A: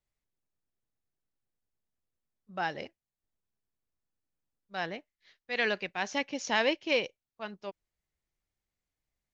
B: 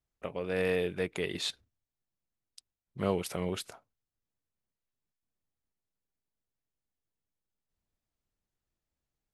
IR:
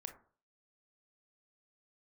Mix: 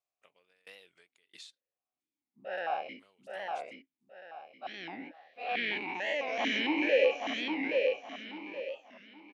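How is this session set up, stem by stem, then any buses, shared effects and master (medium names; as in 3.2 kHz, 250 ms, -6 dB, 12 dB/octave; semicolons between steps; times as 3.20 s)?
+3.0 dB, 0.00 s, no send, echo send -3.5 dB, every event in the spectrogram widened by 240 ms; stepped vowel filter 4.5 Hz
-12.5 dB, 0.00 s, no send, no echo send, frequency weighting ITU-R 468; compression 6:1, threshold -32 dBFS, peak gain reduction 12 dB; sawtooth tremolo in dB decaying 1.5 Hz, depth 28 dB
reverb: none
echo: feedback delay 823 ms, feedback 30%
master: warped record 45 rpm, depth 160 cents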